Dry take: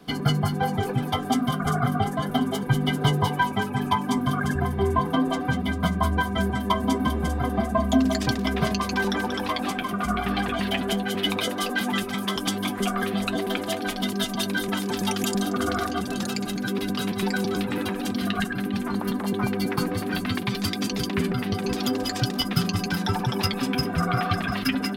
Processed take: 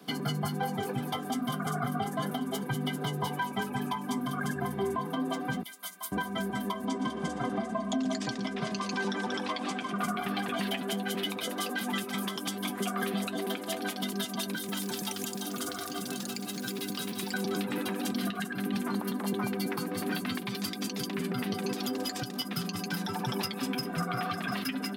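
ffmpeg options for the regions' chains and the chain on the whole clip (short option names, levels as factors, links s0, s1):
-filter_complex "[0:a]asettb=1/sr,asplit=3[s0][s1][s2];[s0]atrim=end=5.634[s3];[s1]atrim=start=5.63:end=6.12,asetpts=PTS-STARTPTS,afade=t=in:d=0.004:c=qsin,afade=t=out:st=0.486:d=0.004:c=qsin,highpass=f=190:p=1,aderivative,volume=31.6,asoftclip=hard,volume=0.0316[s4];[s2]atrim=start=6.116[s5];[s3][s4]acrossfade=d=0.004:c1=hsin:c2=qsin[s6];[s6][s5]acrossfade=d=0.004:c1=qsin:c2=hsin,asettb=1/sr,asplit=3[s7][s8][s9];[s7]atrim=end=6.854[s10];[s8]atrim=start=6.85:end=9.98,asetpts=PTS-STARTPTS,afade=t=in:d=0.004:c=qsin,afade=t=out:st=3.126:d=0.004:c=qsin,lowpass=f=8300:w=0.5412,lowpass=f=8300:w=1.3066,aecho=1:1:116:0.2,atrim=end_sample=138033[s11];[s9]atrim=start=9.976[s12];[s10][s11]acrossfade=d=0.004:c1=hsin:c2=qsin[s13];[s13][s12]acrossfade=d=0.004:c1=qsin:c2=hsin,asettb=1/sr,asplit=3[s14][s15][s16];[s14]atrim=end=14.554[s17];[s15]atrim=start=14.55:end=17.34,asetpts=PTS-STARTPTS,afade=t=in:d=0.004:c=qsin,afade=t=out:st=2.786:d=0.004:c=qsin,acrossover=split=190|3000[s18][s19][s20];[s18]acompressor=threshold=0.0158:ratio=4[s21];[s19]acompressor=threshold=0.0178:ratio=4[s22];[s20]acompressor=threshold=0.0178:ratio=4[s23];[s21][s22][s23]amix=inputs=3:normalize=0,acrusher=bits=6:mode=log:mix=0:aa=0.000001,aecho=1:1:342:0.316,atrim=end_sample=123039[s24];[s16]atrim=start=17.336[s25];[s17][s24]acrossfade=d=0.004:c1=hsin:c2=qsin[s26];[s26][s25]acrossfade=d=0.004:c1=qsin:c2=hsin,highpass=f=140:w=0.5412,highpass=f=140:w=1.3066,highshelf=f=7300:g=7,alimiter=limit=0.112:level=0:latency=1:release=347,volume=0.75"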